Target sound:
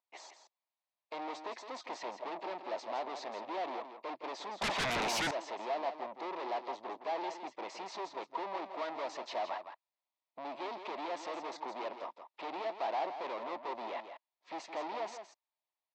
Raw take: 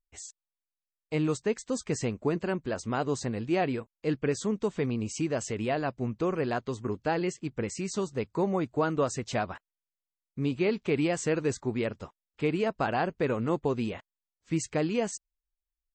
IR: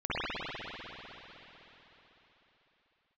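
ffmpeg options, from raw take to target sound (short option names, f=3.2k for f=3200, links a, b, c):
-filter_complex "[0:a]aeval=exprs='(tanh(141*val(0)+0.45)-tanh(0.45))/141':c=same,highpass=f=380:w=0.5412,highpass=f=380:w=1.3066,equalizer=f=450:t=q:w=4:g=-8,equalizer=f=660:t=q:w=4:g=6,equalizer=f=940:t=q:w=4:g=9,equalizer=f=1.5k:t=q:w=4:g=-9,equalizer=f=3k:t=q:w=4:g=-5,lowpass=f=4.2k:w=0.5412,lowpass=f=4.2k:w=1.3066,asplit=2[a][b];[b]aecho=0:1:165:0.355[c];[a][c]amix=inputs=2:normalize=0,asettb=1/sr,asplit=3[d][e][f];[d]atrim=end=4.614[g];[e]atrim=start=4.61:end=5.31,asetpts=PTS-STARTPTS,afade=t=in:d=0.004:c=qsin,afade=t=out:st=0.696:d=0.004:c=qsin,aeval=exprs='0.015*sin(PI/2*5.01*val(0)/0.015)':c=same[h];[f]atrim=start=5.306[i];[g][h]acrossfade=d=0.004:c1=hsin:c2=qsin[j];[j][i]acrossfade=d=0.004:c1=qsin:c2=hsin,volume=7dB"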